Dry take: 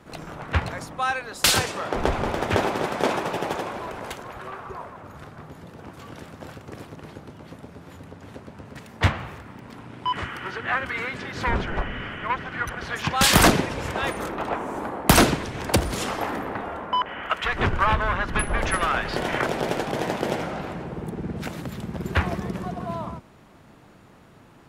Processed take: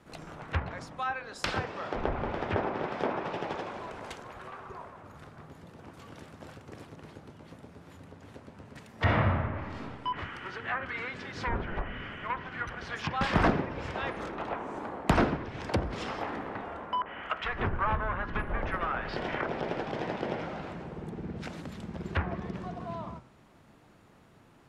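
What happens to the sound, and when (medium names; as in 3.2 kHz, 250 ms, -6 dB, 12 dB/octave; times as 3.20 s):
8.94–9.81 s: reverb throw, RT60 1.4 s, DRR -8 dB
whole clip: dynamic bell 5.2 kHz, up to +5 dB, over -51 dBFS, Q 6.5; de-hum 64.04 Hz, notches 27; low-pass that closes with the level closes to 1.8 kHz, closed at -20 dBFS; trim -7 dB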